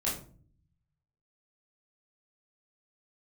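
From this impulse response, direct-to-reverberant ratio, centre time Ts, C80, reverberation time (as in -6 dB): -7.5 dB, 35 ms, 11.5 dB, 0.45 s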